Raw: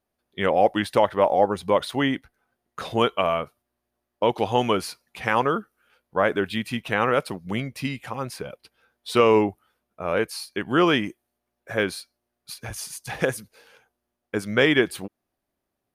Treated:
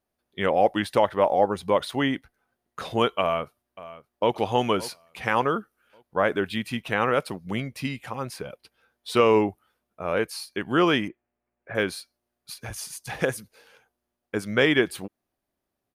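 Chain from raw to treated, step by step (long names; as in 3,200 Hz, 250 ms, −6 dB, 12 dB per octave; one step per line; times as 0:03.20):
0:03.20–0:04.33: delay throw 570 ms, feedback 35%, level −16.5 dB
0:11.08–0:11.75: Chebyshev low-pass filter 2,400 Hz, order 3
level −1.5 dB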